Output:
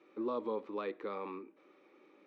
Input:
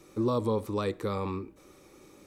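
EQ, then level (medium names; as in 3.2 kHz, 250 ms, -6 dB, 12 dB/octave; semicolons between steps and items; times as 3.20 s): high-pass 250 Hz 24 dB/octave; four-pole ladder low-pass 3.4 kHz, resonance 25%; -1.5 dB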